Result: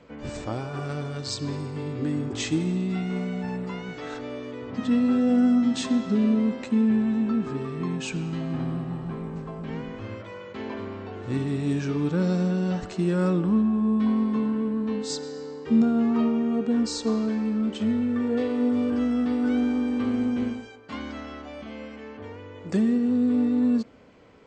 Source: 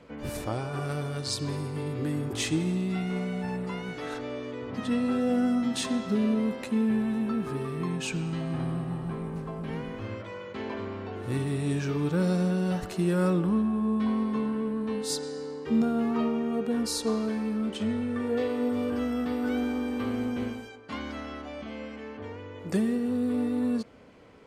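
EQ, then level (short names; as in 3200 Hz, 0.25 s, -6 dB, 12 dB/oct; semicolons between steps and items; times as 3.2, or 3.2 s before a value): brick-wall FIR low-pass 8300 Hz; dynamic EQ 250 Hz, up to +6 dB, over -39 dBFS, Q 2.2; 0.0 dB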